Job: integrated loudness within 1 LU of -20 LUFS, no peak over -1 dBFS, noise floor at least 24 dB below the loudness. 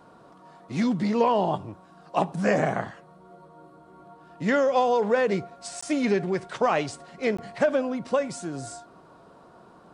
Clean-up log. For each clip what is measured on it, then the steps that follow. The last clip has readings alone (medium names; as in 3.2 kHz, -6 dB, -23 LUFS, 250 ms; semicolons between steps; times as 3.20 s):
dropouts 2; longest dropout 15 ms; loudness -26.0 LUFS; peak level -9.5 dBFS; loudness target -20.0 LUFS
-> interpolate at 5.81/7.37 s, 15 ms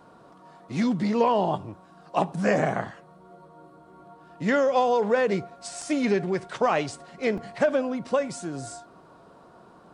dropouts 0; loudness -26.0 LUFS; peak level -9.5 dBFS; loudness target -20.0 LUFS
-> trim +6 dB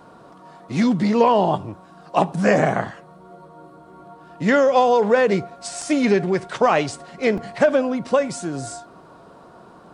loudness -20.0 LUFS; peak level -3.5 dBFS; noise floor -47 dBFS